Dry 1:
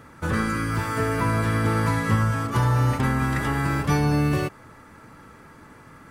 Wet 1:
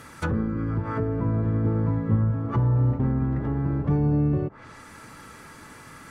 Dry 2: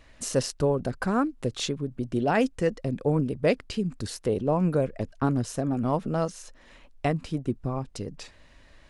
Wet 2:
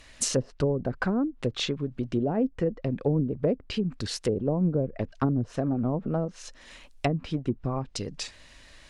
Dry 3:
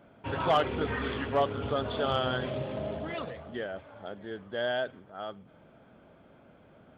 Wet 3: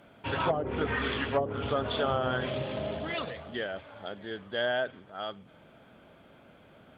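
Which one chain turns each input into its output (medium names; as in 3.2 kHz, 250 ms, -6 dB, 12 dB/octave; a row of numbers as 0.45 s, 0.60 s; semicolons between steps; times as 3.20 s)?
low-pass that closes with the level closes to 450 Hz, closed at -21 dBFS; treble shelf 2.3 kHz +12 dB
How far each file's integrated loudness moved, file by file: -1.5 LU, -1.0 LU, 0.0 LU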